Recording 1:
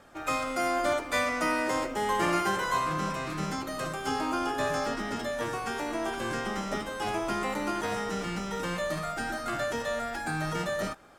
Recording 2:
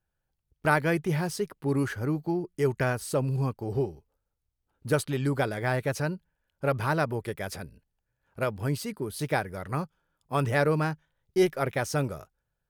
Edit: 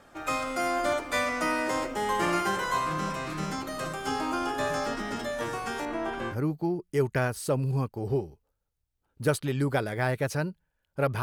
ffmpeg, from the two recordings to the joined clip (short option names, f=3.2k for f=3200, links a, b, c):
-filter_complex "[0:a]asettb=1/sr,asplit=3[a][b][c];[a]atrim=end=5.854[d];[b]atrim=start=5.85:end=6.36,asetpts=PTS-STARTPTS,afade=t=in:d=0.004:c=qsin,afade=t=out:st=0.506:d=0.004:c=qsin,bass=f=250:g=1,treble=f=4k:g=-13[e];[c]atrim=start=6.356[f];[d][e]acrossfade=d=0.004:c1=hsin:c2=qsin[g];[g][f]acrossfade=d=0.004:c1=qsin:c2=hsin,apad=whole_dur=11.22,atrim=end=11.22,atrim=end=6.36,asetpts=PTS-STARTPTS[h];[1:a]atrim=start=1.93:end=6.87,asetpts=PTS-STARTPTS[i];[h][i]acrossfade=d=0.08:c1=tri:c2=tri"